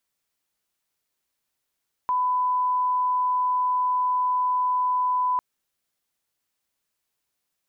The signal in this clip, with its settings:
line-up tone −20 dBFS 3.30 s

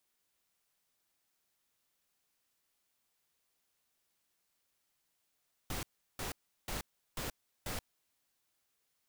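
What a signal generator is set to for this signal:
noise bursts pink, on 0.13 s, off 0.36 s, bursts 5, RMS −39 dBFS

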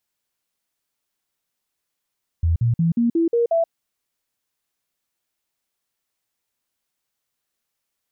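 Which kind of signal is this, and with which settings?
stepped sweep 83.1 Hz up, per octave 2, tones 7, 0.13 s, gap 0.05 s −15 dBFS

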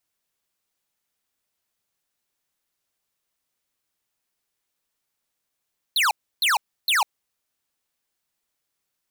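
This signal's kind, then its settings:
repeated falling chirps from 4,400 Hz, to 760 Hz, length 0.15 s square, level −19.5 dB, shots 3, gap 0.31 s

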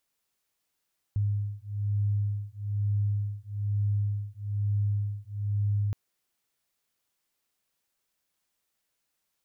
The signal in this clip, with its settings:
two tones that beat 102 Hz, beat 1.1 Hz, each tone −29 dBFS 4.77 s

